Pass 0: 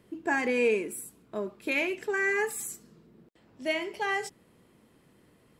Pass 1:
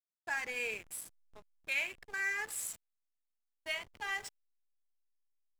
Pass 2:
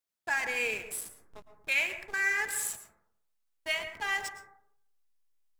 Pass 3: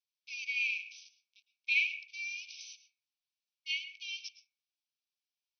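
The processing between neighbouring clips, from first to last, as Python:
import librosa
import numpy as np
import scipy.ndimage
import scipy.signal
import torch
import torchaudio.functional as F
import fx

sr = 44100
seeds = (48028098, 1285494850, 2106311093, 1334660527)

y1 = fx.tone_stack(x, sr, knobs='10-0-10')
y1 = fx.backlash(y1, sr, play_db=-38.0)
y2 = fx.rev_plate(y1, sr, seeds[0], rt60_s=0.7, hf_ratio=0.25, predelay_ms=100, drr_db=9.0)
y2 = y2 * librosa.db_to_amplitude(6.0)
y3 = fx.brickwall_bandpass(y2, sr, low_hz=2200.0, high_hz=6200.0)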